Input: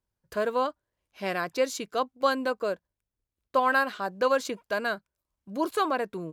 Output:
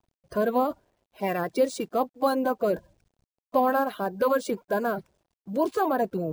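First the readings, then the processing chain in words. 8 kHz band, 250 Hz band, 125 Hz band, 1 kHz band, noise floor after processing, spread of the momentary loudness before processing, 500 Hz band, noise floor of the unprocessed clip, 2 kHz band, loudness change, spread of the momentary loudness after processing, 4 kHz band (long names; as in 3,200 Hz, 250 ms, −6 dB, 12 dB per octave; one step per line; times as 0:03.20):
−2.5 dB, +5.5 dB, can't be measured, +1.0 dB, below −85 dBFS, 8 LU, +3.0 dB, below −85 dBFS, −5.5 dB, +1.5 dB, 8 LU, −5.5 dB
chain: spectral magnitudes quantised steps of 30 dB
in parallel at +1 dB: brickwall limiter −24 dBFS, peak gain reduction 11.5 dB
on the sum: Butterworth low-pass 12,000 Hz 72 dB per octave
reversed playback
upward compression, threshold −27 dBFS
reversed playback
bad sample-rate conversion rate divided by 3×, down none, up hold
bit reduction 11 bits
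drawn EQ curve 450 Hz 0 dB, 740 Hz +2 dB, 1,200 Hz −8 dB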